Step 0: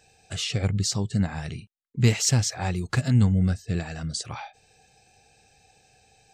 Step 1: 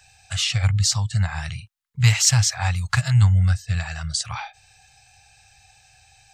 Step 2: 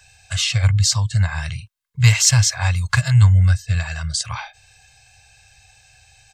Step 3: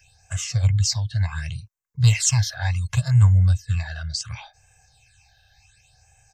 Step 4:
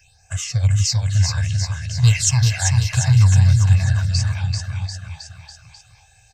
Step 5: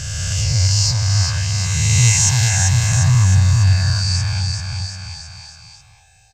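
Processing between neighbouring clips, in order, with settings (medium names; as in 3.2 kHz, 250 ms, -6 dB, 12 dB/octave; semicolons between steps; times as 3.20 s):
Chebyshev band-stop 100–990 Hz, order 2; trim +7.5 dB
comb 1.9 ms, depth 43%; trim +2 dB
phase shifter stages 8, 0.69 Hz, lowest notch 300–4100 Hz; trim -4 dB
bouncing-ball echo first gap 390 ms, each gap 0.9×, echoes 5; trim +2 dB
reverse spectral sustain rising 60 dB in 2.71 s; trim -2 dB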